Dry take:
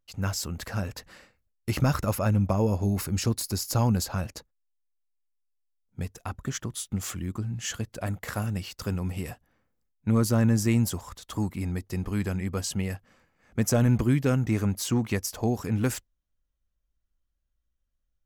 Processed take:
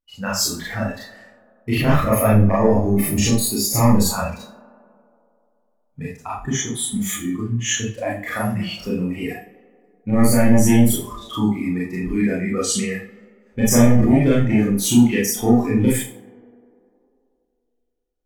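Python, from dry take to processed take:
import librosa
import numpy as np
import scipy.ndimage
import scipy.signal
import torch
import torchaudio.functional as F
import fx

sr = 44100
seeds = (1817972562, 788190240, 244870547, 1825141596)

p1 = fx.fold_sine(x, sr, drive_db=5, ceiling_db=-13.0)
p2 = fx.noise_reduce_blind(p1, sr, reduce_db=16)
p3 = p2 + fx.echo_tape(p2, sr, ms=96, feedback_pct=85, wet_db=-19.0, lp_hz=2400.0, drive_db=10.0, wow_cents=26, dry=0)
p4 = fx.rev_schroeder(p3, sr, rt60_s=0.34, comb_ms=26, drr_db=-6.5)
y = p4 * librosa.db_to_amplitude(-3.0)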